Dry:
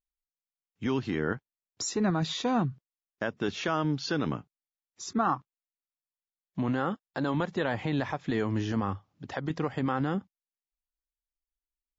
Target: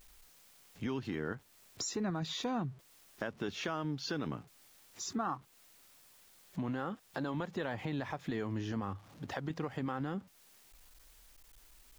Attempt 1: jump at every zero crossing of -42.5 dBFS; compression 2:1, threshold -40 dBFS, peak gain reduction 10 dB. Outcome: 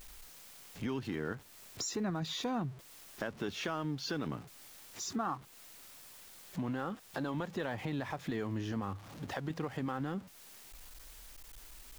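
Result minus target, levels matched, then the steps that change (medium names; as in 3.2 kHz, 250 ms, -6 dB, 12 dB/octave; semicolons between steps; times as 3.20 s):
jump at every zero crossing: distortion +8 dB
change: jump at every zero crossing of -50.5 dBFS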